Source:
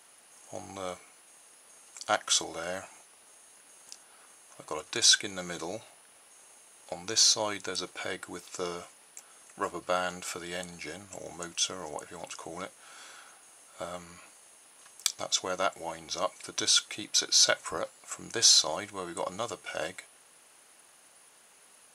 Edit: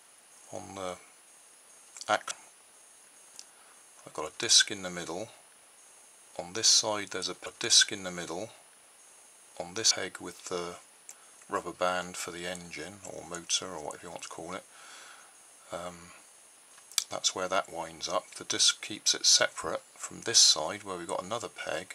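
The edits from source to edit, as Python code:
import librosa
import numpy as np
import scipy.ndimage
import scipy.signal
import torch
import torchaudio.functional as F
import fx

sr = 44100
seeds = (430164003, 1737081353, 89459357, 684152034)

y = fx.edit(x, sr, fx.cut(start_s=2.31, length_s=0.53),
    fx.duplicate(start_s=4.78, length_s=2.45, to_s=7.99), tone=tone)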